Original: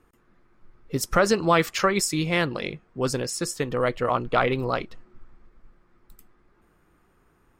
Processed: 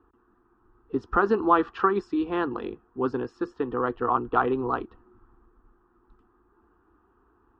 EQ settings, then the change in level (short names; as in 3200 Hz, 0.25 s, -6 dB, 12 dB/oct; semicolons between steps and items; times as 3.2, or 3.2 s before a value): HPF 43 Hz; LPF 2400 Hz 24 dB/oct; fixed phaser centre 580 Hz, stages 6; +2.5 dB